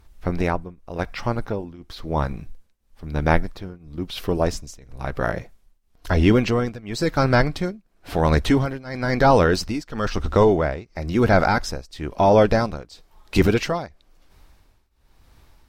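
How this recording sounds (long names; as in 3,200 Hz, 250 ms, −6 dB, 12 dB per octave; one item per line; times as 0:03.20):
tremolo triangle 0.99 Hz, depth 95%
SBC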